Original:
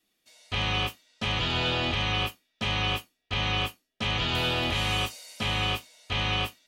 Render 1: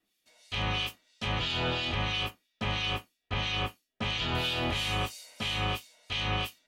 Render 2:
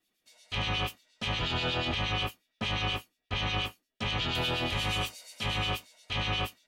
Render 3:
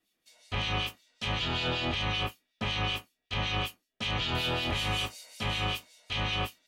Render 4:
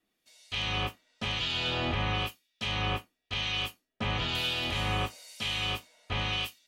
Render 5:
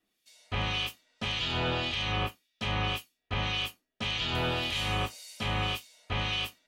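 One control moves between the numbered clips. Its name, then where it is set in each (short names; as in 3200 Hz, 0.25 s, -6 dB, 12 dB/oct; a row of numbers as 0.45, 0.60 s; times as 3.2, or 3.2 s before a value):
harmonic tremolo, rate: 3, 8.4, 5.3, 1, 1.8 Hz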